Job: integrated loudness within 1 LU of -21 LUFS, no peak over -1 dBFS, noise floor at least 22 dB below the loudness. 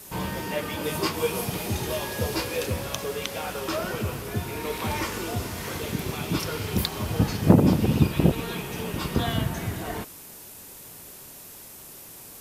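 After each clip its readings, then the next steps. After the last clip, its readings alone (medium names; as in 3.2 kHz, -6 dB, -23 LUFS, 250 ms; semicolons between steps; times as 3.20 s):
noise floor -45 dBFS; noise floor target -49 dBFS; loudness -27.0 LUFS; peak level -4.0 dBFS; loudness target -21.0 LUFS
-> noise print and reduce 6 dB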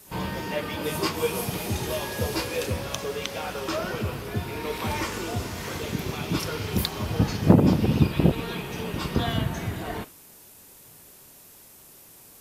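noise floor -50 dBFS; loudness -27.0 LUFS; peak level -4.0 dBFS; loudness target -21.0 LUFS
-> trim +6 dB; peak limiter -1 dBFS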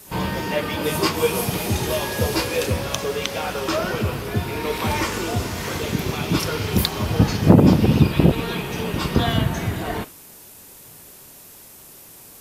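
loudness -21.5 LUFS; peak level -1.0 dBFS; noise floor -44 dBFS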